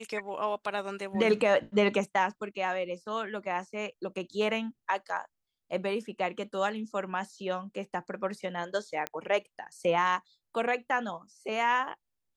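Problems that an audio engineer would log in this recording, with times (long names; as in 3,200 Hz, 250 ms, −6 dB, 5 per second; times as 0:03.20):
0:09.07: click −17 dBFS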